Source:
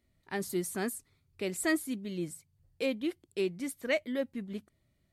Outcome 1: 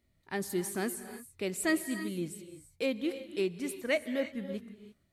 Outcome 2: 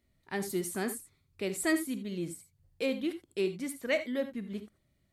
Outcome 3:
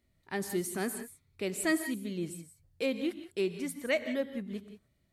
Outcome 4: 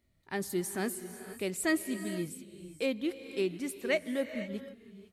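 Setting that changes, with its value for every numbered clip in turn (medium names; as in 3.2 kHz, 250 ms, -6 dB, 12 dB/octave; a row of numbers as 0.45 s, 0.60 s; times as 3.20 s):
gated-style reverb, gate: 360 ms, 100 ms, 200 ms, 530 ms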